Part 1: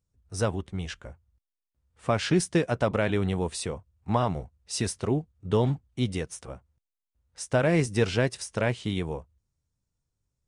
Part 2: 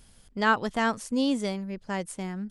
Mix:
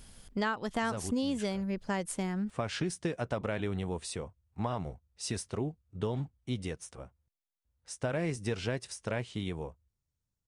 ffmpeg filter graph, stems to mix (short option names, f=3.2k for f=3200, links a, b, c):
-filter_complex "[0:a]adelay=500,volume=-6dB[a];[1:a]volume=2.5dB[b];[a][b]amix=inputs=2:normalize=0,acompressor=threshold=-28dB:ratio=12"